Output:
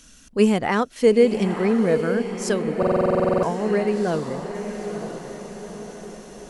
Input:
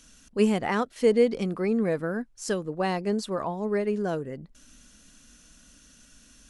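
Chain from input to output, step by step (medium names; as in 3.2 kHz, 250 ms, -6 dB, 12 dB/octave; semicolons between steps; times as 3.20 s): echo that smears into a reverb 923 ms, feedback 51%, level -8.5 dB; buffer glitch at 2.78 s, samples 2048, times 13; trim +5 dB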